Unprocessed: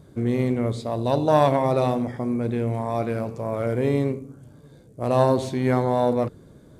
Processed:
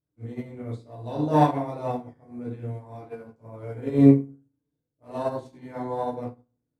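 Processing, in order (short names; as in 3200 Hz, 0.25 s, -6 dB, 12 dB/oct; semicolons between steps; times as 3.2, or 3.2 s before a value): chorus 1.1 Hz, delay 15.5 ms, depth 6.5 ms; FDN reverb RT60 0.64 s, low-frequency decay 1.4×, high-frequency decay 0.5×, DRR -2.5 dB; upward expander 2.5:1, over -35 dBFS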